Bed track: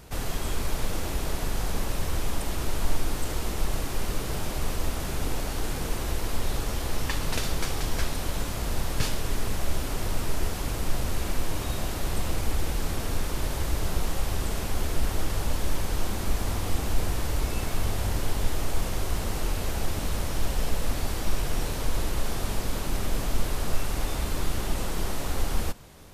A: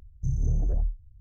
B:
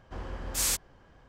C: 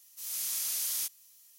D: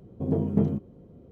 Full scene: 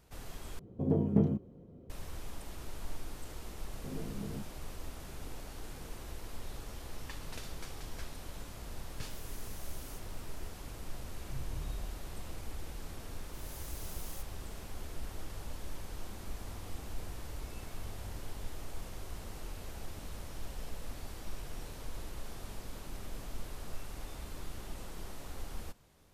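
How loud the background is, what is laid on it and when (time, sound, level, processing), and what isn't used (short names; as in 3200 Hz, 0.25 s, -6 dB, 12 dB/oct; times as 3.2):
bed track -15.5 dB
0.59 replace with D -3.5 dB
3.64 add D -12.5 dB + compressor, threshold -24 dBFS
8.91 add C -14 dB + compressor 2.5:1, threshold -39 dBFS
11.07 add A -16 dB
13.15 add C -17 dB + wrapped overs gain 25 dB
not used: B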